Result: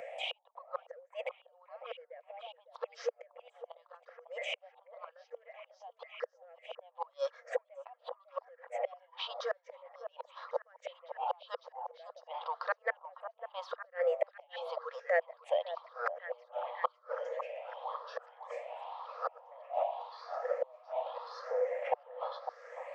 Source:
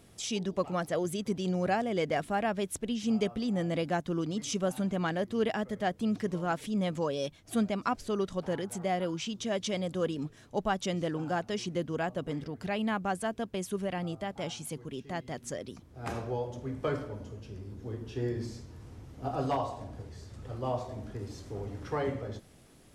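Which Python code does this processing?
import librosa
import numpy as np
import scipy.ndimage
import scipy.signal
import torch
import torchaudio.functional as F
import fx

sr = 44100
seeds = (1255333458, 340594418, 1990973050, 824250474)

p1 = fx.spec_ripple(x, sr, per_octave=0.52, drift_hz=0.92, depth_db=22)
p2 = fx.high_shelf(p1, sr, hz=4300.0, db=-12.0)
p3 = fx.notch(p2, sr, hz=1500.0, q=8.1)
p4 = 10.0 ** (-25.5 / 20.0) * np.tanh(p3 / 10.0 ** (-25.5 / 20.0))
p5 = p3 + (p4 * 10.0 ** (-9.5 / 20.0))
p6 = fx.gate_flip(p5, sr, shuts_db=-20.0, range_db=-40)
p7 = fx.brickwall_highpass(p6, sr, low_hz=480.0)
p8 = fx.spacing_loss(p7, sr, db_at_10k=37)
p9 = p8 + fx.echo_stepped(p8, sr, ms=552, hz=820.0, octaves=0.7, feedback_pct=70, wet_db=-10.5, dry=0)
p10 = fx.band_squash(p9, sr, depth_pct=40)
y = p10 * 10.0 ** (11.0 / 20.0)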